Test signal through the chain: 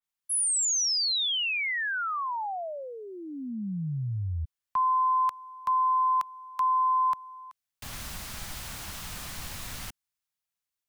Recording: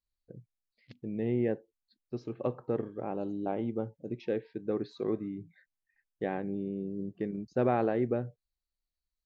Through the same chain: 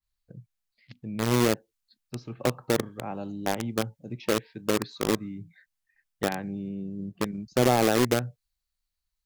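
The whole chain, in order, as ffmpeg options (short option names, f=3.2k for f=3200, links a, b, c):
-filter_complex "[0:a]acrossover=split=260|610|2100[a][b][c][d];[b]acrusher=bits=4:mix=0:aa=0.000001[e];[a][e][c][d]amix=inputs=4:normalize=0,adynamicequalizer=threshold=0.00282:dfrequency=3100:dqfactor=0.7:tfrequency=3100:tqfactor=0.7:attack=5:release=100:ratio=0.375:range=2:mode=boostabove:tftype=highshelf,volume=5.5dB"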